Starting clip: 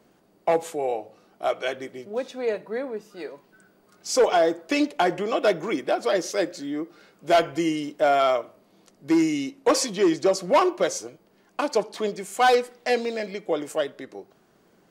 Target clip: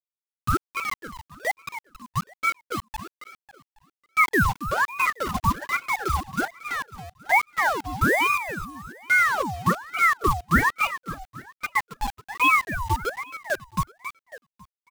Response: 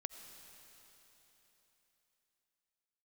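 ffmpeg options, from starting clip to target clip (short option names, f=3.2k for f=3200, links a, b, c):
-filter_complex "[0:a]asplit=2[a][b];[b]alimiter=limit=-19.5dB:level=0:latency=1:release=47,volume=1dB[c];[a][c]amix=inputs=2:normalize=0,afftfilt=real='re*gte(hypot(re,im),1)':imag='im*gte(hypot(re,im),1)':win_size=1024:overlap=0.75,aemphasis=mode=production:type=50fm,acrusher=bits=4:mix=0:aa=0.000001,adynamicequalizer=threshold=0.00126:dfrequency=8400:dqfactor=7.2:tfrequency=8400:tqfactor=7.2:attack=5:release=100:ratio=0.375:range=2.5:mode=cutabove:tftype=bell,asplit=2[d][e];[e]aecho=0:1:274|548|822|1096|1370:0.299|0.128|0.0552|0.0237|0.0102[f];[d][f]amix=inputs=2:normalize=0,aeval=exprs='val(0)*sin(2*PI*1100*n/s+1100*0.65/1.2*sin(2*PI*1.2*n/s))':c=same"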